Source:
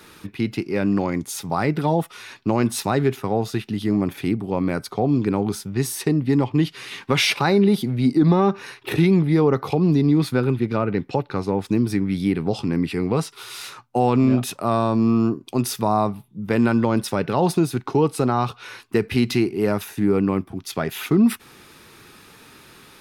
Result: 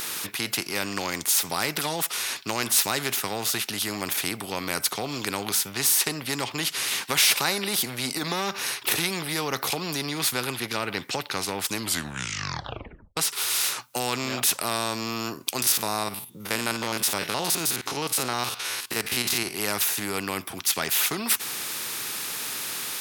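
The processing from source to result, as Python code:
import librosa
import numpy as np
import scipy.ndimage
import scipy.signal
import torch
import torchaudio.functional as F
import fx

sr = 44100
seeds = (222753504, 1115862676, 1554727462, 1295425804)

y = fx.spec_steps(x, sr, hold_ms=50, at=(15.62, 19.54))
y = fx.edit(y, sr, fx.tape_stop(start_s=11.72, length_s=1.45), tone=tone)
y = scipy.signal.sosfilt(scipy.signal.butter(2, 48.0, 'highpass', fs=sr, output='sos'), y)
y = fx.tilt_eq(y, sr, slope=4.0)
y = fx.spectral_comp(y, sr, ratio=2.0)
y = y * librosa.db_to_amplitude(-1.0)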